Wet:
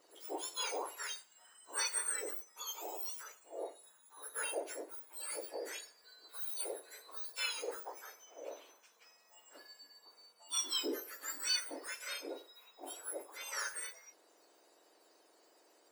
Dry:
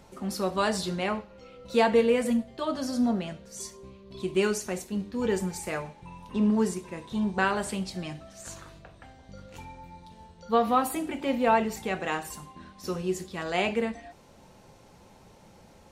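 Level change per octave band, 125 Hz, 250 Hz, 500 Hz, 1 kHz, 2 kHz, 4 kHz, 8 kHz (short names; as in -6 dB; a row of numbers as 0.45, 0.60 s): under -40 dB, -25.5 dB, -17.5 dB, -18.0 dB, -10.5 dB, -1.5 dB, +0.5 dB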